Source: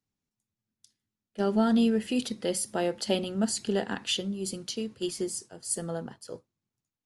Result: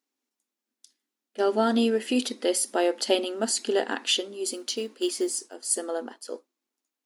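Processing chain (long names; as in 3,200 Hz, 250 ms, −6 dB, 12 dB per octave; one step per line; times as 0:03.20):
linear-phase brick-wall high-pass 230 Hz
0:04.51–0:05.54: floating-point word with a short mantissa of 4 bits
level +5 dB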